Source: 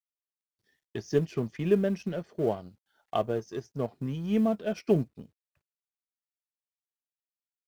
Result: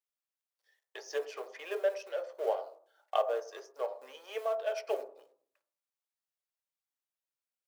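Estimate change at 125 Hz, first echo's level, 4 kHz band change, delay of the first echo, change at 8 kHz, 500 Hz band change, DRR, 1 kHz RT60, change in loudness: under -40 dB, no echo, -0.5 dB, no echo, no reading, -4.0 dB, 7.0 dB, 0.50 s, -6.0 dB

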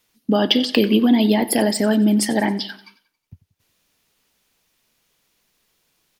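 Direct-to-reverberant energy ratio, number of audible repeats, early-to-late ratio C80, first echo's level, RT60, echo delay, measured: no reverb, 3, no reverb, -18.0 dB, no reverb, 91 ms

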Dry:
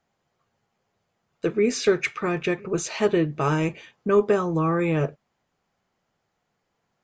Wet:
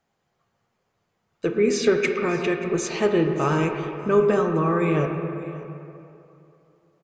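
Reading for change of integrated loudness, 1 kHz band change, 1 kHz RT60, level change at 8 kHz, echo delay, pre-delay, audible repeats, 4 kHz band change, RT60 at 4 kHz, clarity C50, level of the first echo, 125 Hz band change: +1.5 dB, +2.0 dB, 2.9 s, 0.0 dB, 582 ms, 32 ms, 1, +0.5 dB, 1.6 s, 4.5 dB, -19.0 dB, +1.0 dB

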